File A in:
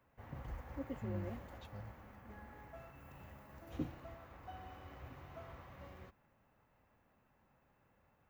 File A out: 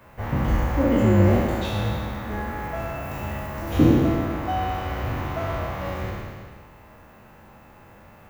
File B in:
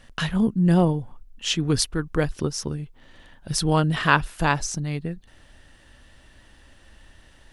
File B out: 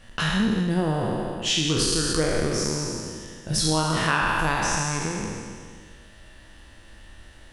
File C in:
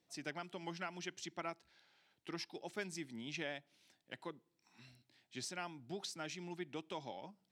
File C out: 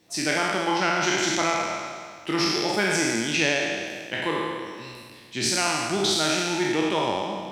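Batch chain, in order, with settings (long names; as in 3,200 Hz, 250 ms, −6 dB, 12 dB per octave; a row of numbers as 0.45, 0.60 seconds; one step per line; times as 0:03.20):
peak hold with a decay on every bin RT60 1.94 s
downward compressor 3 to 1, threshold −21 dBFS
hard clipping −8.5 dBFS
reverb whose tail is shaped and stops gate 250 ms falling, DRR 7.5 dB
loudness normalisation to −24 LKFS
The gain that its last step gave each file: +20.5, 0.0, +15.5 decibels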